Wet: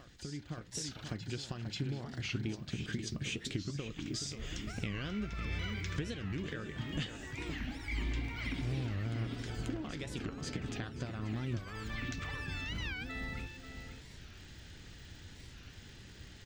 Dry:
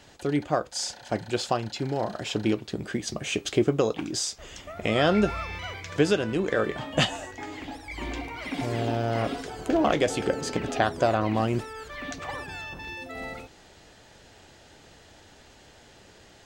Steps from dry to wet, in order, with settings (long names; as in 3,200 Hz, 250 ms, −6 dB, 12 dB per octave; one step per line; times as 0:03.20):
surface crackle 210 per second −47 dBFS
downward compressor 6 to 1, threshold −35 dBFS, peak gain reduction 17.5 dB
guitar amp tone stack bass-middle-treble 6-0-2
slap from a distant wall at 92 metres, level −7 dB
automatic gain control gain up to 7 dB
parametric band 13,000 Hz −13.5 dB 1.5 octaves
backwards echo 537 ms −11 dB
wow of a warped record 45 rpm, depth 250 cents
level +11 dB